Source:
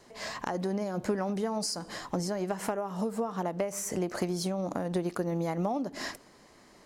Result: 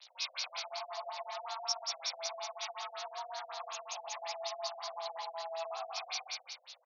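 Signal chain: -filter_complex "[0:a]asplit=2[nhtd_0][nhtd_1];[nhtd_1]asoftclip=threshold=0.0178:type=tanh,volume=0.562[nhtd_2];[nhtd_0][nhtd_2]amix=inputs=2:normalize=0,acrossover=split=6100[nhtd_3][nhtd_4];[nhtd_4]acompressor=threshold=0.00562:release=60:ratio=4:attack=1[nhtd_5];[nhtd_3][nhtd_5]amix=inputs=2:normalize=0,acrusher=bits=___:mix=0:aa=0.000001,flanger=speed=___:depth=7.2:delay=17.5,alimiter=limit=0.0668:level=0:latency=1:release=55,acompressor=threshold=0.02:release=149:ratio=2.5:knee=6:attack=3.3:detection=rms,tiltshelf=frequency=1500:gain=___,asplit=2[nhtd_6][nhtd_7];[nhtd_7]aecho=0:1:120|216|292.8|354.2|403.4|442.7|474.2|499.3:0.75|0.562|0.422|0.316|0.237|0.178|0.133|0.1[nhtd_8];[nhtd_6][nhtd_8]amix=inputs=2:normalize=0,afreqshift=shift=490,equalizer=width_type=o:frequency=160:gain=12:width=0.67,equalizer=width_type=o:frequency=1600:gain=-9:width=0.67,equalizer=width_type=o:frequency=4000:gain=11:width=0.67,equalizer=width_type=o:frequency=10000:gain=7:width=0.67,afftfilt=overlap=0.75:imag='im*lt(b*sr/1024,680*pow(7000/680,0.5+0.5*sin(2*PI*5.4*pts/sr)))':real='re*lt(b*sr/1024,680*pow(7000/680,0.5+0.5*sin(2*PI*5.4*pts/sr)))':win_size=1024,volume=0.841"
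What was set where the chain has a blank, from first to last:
7, 0.71, -7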